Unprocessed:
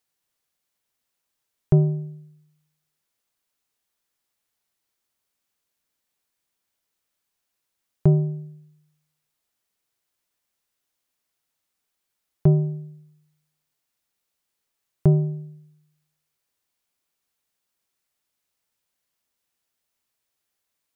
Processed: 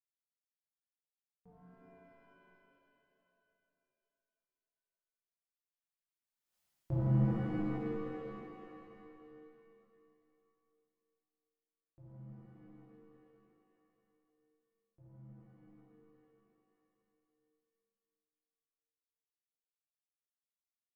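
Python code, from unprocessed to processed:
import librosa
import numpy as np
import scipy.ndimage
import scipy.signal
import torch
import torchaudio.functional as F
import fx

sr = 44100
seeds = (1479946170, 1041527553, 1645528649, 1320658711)

y = fx.doppler_pass(x, sr, speed_mps=53, closest_m=3.0, pass_at_s=6.57)
y = fx.formant_shift(y, sr, semitones=3)
y = fx.rev_shimmer(y, sr, seeds[0], rt60_s=2.9, semitones=7, shimmer_db=-2, drr_db=-10.0)
y = y * 10.0 ** (-8.5 / 20.0)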